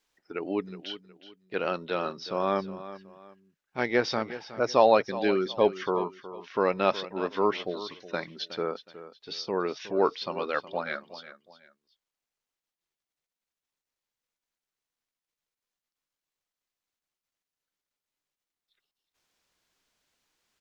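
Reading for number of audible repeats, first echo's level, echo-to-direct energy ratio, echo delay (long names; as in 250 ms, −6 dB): 2, −14.5 dB, −14.0 dB, 367 ms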